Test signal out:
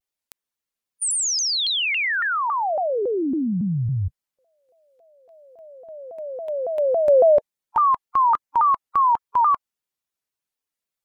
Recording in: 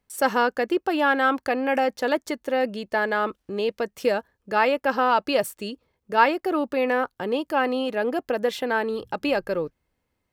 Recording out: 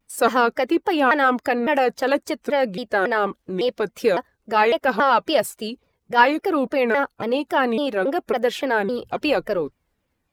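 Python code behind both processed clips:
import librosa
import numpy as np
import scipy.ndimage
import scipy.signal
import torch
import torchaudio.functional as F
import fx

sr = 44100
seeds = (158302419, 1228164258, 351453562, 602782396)

y = fx.spec_quant(x, sr, step_db=15)
y = fx.vibrato_shape(y, sr, shape='saw_down', rate_hz=3.6, depth_cents=250.0)
y = y * 10.0 ** (3.5 / 20.0)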